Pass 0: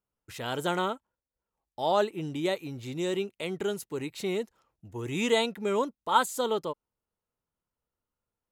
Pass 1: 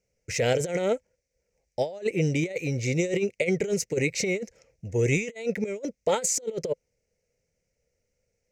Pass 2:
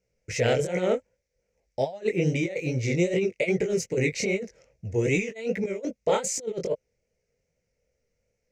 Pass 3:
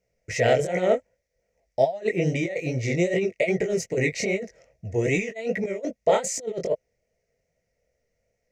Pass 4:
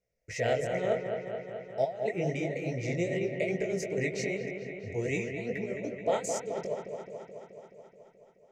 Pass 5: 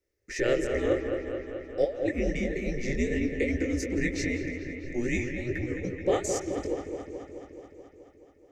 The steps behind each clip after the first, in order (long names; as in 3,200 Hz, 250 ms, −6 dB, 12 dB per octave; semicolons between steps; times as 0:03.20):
drawn EQ curve 160 Hz 0 dB, 320 Hz −8 dB, 510 Hz +8 dB, 1,100 Hz −23 dB, 2,200 Hz +7 dB, 3,400 Hz −13 dB, 5,900 Hz +8 dB, 11,000 Hz −14 dB; compressor whose output falls as the input rises −33 dBFS, ratio −0.5; level +7.5 dB
chorus effect 2.5 Hz, delay 15.5 ms, depth 7.5 ms; high-shelf EQ 7,500 Hz −10 dB; level +4 dB
hollow resonant body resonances 670/1,900 Hz, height 11 dB, ringing for 30 ms
delay with a low-pass on its return 214 ms, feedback 70%, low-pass 2,700 Hz, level −6 dB; level −8.5 dB
frequency shifter −110 Hz; feedback echo with a swinging delay time 168 ms, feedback 56%, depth 167 cents, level −19 dB; level +3 dB